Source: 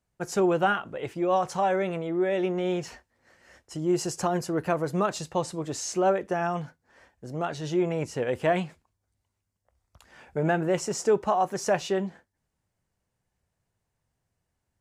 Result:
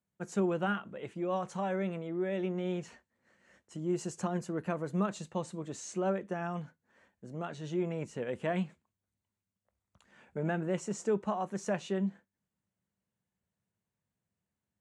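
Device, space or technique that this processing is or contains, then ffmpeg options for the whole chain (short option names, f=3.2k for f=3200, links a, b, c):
car door speaker: -af "highpass=89,equalizer=f=200:t=q:w=4:g=10,equalizer=f=770:t=q:w=4:g=-4,equalizer=f=5.1k:t=q:w=4:g=-9,lowpass=f=9.4k:w=0.5412,lowpass=f=9.4k:w=1.3066,volume=-8.5dB"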